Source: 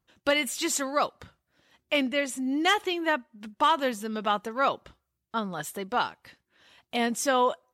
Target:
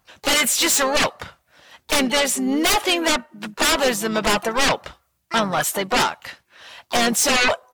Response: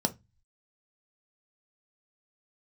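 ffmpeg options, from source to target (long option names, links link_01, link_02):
-filter_complex "[0:a]lowshelf=frequency=480:width_type=q:width=1.5:gain=-6.5,aeval=exprs='0.316*sin(PI/2*6.31*val(0)/0.316)':channel_layout=same,asplit=4[link_01][link_02][link_03][link_04];[link_02]asetrate=33038,aresample=44100,atempo=1.33484,volume=-15dB[link_05];[link_03]asetrate=37084,aresample=44100,atempo=1.18921,volume=-16dB[link_06];[link_04]asetrate=66075,aresample=44100,atempo=0.66742,volume=-12dB[link_07];[link_01][link_05][link_06][link_07]amix=inputs=4:normalize=0,volume=-4.5dB"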